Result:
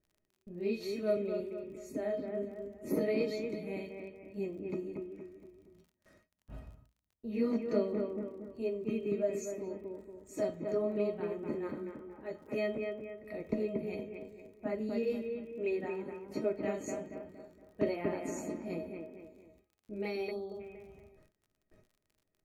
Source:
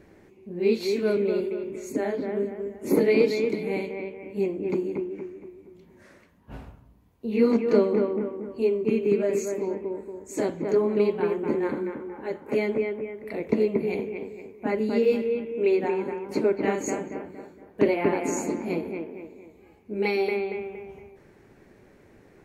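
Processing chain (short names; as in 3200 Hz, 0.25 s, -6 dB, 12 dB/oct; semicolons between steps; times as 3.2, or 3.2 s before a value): spectral delete 20.31–20.6, 1300–3200 Hz; de-hum 439.1 Hz, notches 5; gate with hold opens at -42 dBFS; low shelf 300 Hz +9 dB; resonator 630 Hz, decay 0.15 s, harmonics all, mix 90%; crackle 42/s -58 dBFS; gain +2 dB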